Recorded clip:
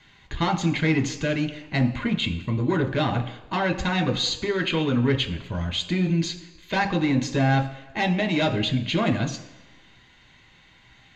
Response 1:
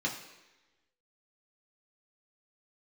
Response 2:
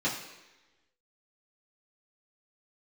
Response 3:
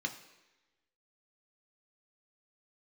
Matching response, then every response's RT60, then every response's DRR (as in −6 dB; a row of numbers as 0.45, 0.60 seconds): 3; 1.1, 1.1, 1.1 seconds; −2.5, −8.5, 4.0 decibels